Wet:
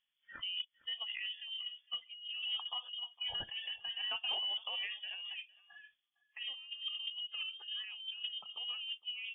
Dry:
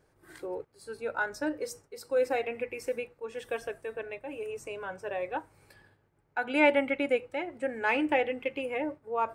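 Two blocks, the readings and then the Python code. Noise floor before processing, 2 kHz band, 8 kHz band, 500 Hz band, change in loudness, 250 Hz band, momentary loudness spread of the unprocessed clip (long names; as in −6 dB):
−70 dBFS, −12.0 dB, below −30 dB, −32.5 dB, −7.0 dB, below −35 dB, 13 LU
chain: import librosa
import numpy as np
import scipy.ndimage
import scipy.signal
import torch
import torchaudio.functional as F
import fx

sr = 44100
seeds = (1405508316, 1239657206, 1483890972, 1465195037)

y = fx.env_lowpass_down(x, sr, base_hz=670.0, full_db=-27.5)
y = fx.noise_reduce_blind(y, sr, reduce_db=23)
y = fx.dynamic_eq(y, sr, hz=2000.0, q=1.7, threshold_db=-52.0, ratio=4.0, max_db=-4)
y = fx.over_compress(y, sr, threshold_db=-40.0, ratio=-1.0)
y = fx.tremolo_random(y, sr, seeds[0], hz=3.5, depth_pct=55)
y = fx.cheby_harmonics(y, sr, harmonics=(2, 4, 5), levels_db=(-18, -32, -28), full_scale_db=-27.0)
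y = y + 10.0 ** (-21.5 / 20.0) * np.pad(y, (int(458 * sr / 1000.0), 0))[:len(y)]
y = fx.freq_invert(y, sr, carrier_hz=3400)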